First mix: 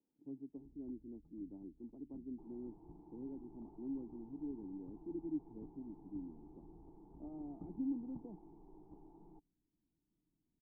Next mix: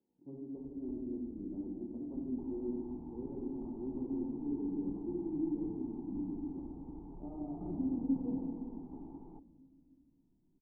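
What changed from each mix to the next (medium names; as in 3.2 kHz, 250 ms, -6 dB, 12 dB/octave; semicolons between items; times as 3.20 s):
second sound +7.0 dB; reverb: on, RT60 2.1 s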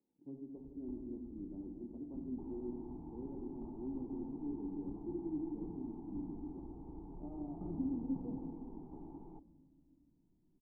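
speech: send -7.0 dB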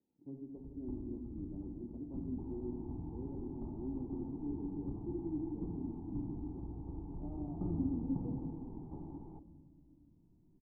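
first sound +5.0 dB; master: add peaking EQ 97 Hz +9 dB 1 oct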